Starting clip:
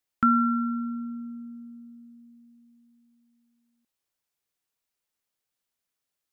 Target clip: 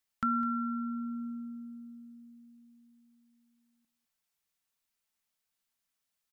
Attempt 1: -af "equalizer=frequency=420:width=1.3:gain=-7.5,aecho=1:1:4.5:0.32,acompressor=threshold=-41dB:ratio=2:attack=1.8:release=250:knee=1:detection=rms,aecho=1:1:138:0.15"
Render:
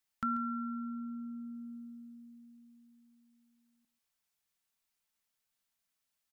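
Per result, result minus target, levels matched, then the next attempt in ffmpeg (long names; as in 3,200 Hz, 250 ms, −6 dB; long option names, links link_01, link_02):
echo 67 ms early; downward compressor: peak gain reduction +3.5 dB
-af "equalizer=frequency=420:width=1.3:gain=-7.5,aecho=1:1:4.5:0.32,acompressor=threshold=-41dB:ratio=2:attack=1.8:release=250:knee=1:detection=rms,aecho=1:1:205:0.15"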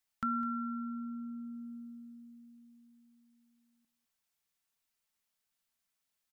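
downward compressor: peak gain reduction +3.5 dB
-af "equalizer=frequency=420:width=1.3:gain=-7.5,aecho=1:1:4.5:0.32,acompressor=threshold=-33.5dB:ratio=2:attack=1.8:release=250:knee=1:detection=rms,aecho=1:1:205:0.15"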